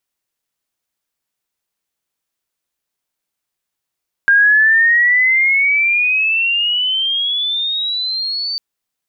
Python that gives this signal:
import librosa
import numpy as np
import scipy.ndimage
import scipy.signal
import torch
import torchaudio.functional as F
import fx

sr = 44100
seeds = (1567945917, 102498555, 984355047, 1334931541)

y = fx.chirp(sr, length_s=4.3, from_hz=1600.0, to_hz=4600.0, law='logarithmic', from_db=-7.0, to_db=-18.5)